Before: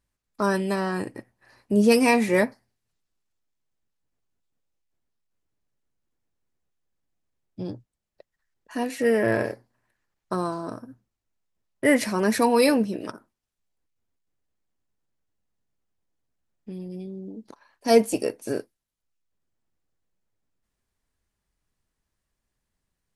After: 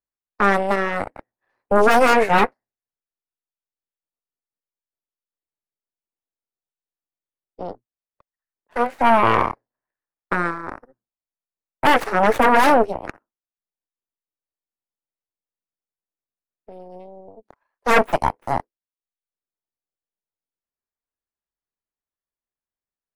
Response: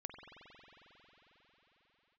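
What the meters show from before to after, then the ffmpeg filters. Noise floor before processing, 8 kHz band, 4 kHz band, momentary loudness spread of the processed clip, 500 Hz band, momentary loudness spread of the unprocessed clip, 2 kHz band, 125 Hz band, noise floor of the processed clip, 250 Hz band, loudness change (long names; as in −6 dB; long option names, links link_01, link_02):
−83 dBFS, −3.0 dB, +3.5 dB, 19 LU, +2.5 dB, 18 LU, +7.5 dB, +1.0 dB, below −85 dBFS, −2.0 dB, +5.0 dB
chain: -filter_complex "[0:a]aeval=exprs='0.531*(cos(1*acos(clip(val(0)/0.531,-1,1)))-cos(1*PI/2))+0.237*(cos(3*acos(clip(val(0)/0.531,-1,1)))-cos(3*PI/2))+0.0188*(cos(5*acos(clip(val(0)/0.531,-1,1)))-cos(5*PI/2))+0.266*(cos(8*acos(clip(val(0)/0.531,-1,1)))-cos(8*PI/2))':channel_layout=same,acrossover=split=310 2100:gain=0.251 1 0.158[link_01][link_02][link_03];[link_01][link_02][link_03]amix=inputs=3:normalize=0,volume=3.5dB"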